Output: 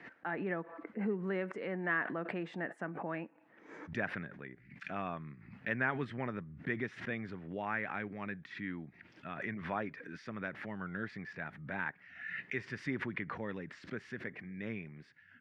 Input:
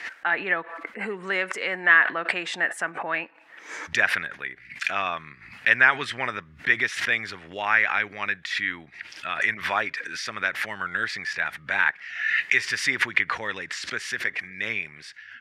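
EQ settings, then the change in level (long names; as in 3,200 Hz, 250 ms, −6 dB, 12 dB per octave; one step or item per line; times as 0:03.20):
resonant band-pass 180 Hz, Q 1.2
+3.5 dB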